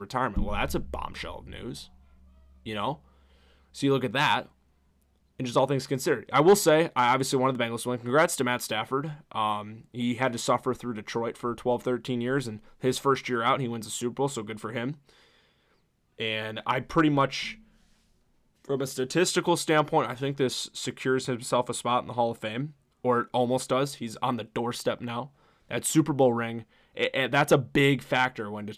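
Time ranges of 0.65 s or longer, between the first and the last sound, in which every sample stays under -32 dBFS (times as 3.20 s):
1.81–2.66 s
2.94–3.78 s
4.42–5.40 s
14.92–16.20 s
17.51–18.70 s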